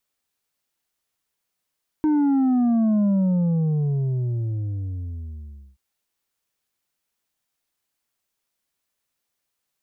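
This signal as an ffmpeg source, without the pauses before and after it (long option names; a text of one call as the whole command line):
ffmpeg -f lavfi -i "aevalsrc='0.141*clip((3.73-t)/2.72,0,1)*tanh(1.78*sin(2*PI*310*3.73/log(65/310)*(exp(log(65/310)*t/3.73)-1)))/tanh(1.78)':duration=3.73:sample_rate=44100" out.wav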